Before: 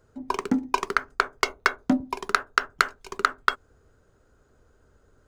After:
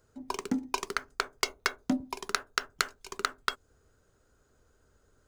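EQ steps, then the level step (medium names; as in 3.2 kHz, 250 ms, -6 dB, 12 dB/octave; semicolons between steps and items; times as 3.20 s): treble shelf 3 kHz +9 dB; dynamic bell 1.4 kHz, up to -5 dB, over -33 dBFS, Q 0.85; -6.5 dB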